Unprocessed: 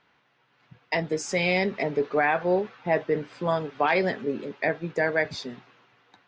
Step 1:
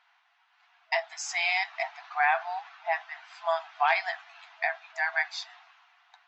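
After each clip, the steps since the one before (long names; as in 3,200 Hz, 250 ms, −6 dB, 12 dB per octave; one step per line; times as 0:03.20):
brick-wall band-pass 650–8,000 Hz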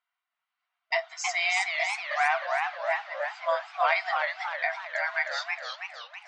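noise gate with hold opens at −53 dBFS
notch comb filter 840 Hz
feedback echo with a swinging delay time 318 ms, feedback 51%, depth 201 cents, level −4 dB
level +1.5 dB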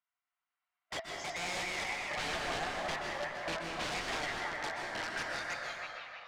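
wrap-around overflow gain 22.5 dB
high-frequency loss of the air 95 metres
dense smooth reverb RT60 2 s, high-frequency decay 0.55×, pre-delay 115 ms, DRR −0.5 dB
level −8 dB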